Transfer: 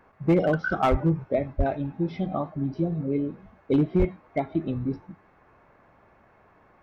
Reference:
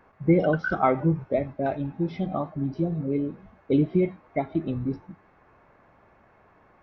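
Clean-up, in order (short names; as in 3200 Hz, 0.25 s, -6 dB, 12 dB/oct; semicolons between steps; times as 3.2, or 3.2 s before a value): clip repair -14.5 dBFS; de-plosive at 0.9/1.57/3.98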